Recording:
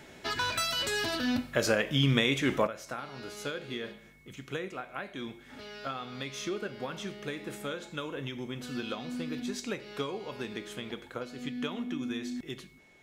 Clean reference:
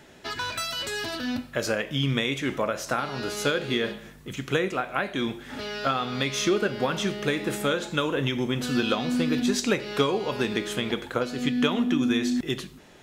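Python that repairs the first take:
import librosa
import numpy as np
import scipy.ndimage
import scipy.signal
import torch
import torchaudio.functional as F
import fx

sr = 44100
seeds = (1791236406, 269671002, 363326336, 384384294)

y = fx.notch(x, sr, hz=2200.0, q=30.0)
y = fx.gain(y, sr, db=fx.steps((0.0, 0.0), (2.67, 11.5)))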